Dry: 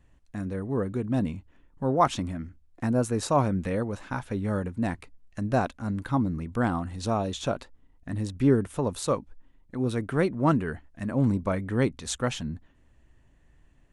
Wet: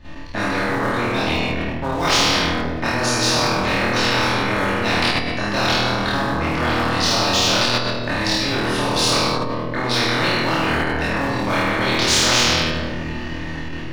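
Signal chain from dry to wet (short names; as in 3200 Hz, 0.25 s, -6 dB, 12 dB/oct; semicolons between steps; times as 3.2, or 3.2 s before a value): AGC gain up to 7 dB; dynamic EQ 1700 Hz, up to -5 dB, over -36 dBFS, Q 1.2; chorus voices 6, 1.3 Hz, delay 27 ms, depth 3 ms; resonant high shelf 6300 Hz -10 dB, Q 3; notches 60/120/180/240 Hz; reverse; compressor 5:1, threshold -35 dBFS, peak gain reduction 19.5 dB; reverse; flutter echo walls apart 4.3 m, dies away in 0.59 s; shoebox room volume 630 m³, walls mixed, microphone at 2.6 m; sample leveller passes 1; spectral compressor 4:1; gain +6.5 dB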